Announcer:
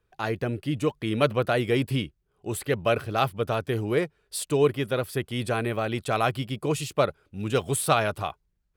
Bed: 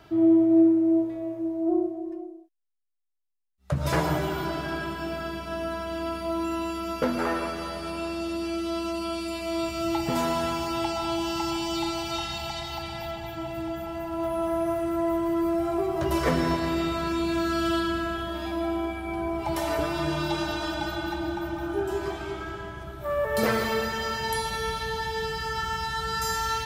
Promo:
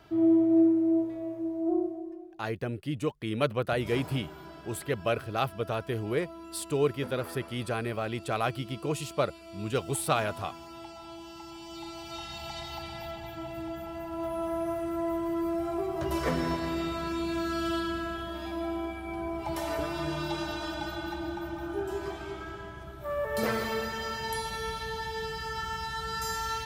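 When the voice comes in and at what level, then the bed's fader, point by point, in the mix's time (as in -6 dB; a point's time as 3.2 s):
2.20 s, -5.0 dB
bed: 1.94 s -3.5 dB
2.73 s -16.5 dB
11.49 s -16.5 dB
12.6 s -5 dB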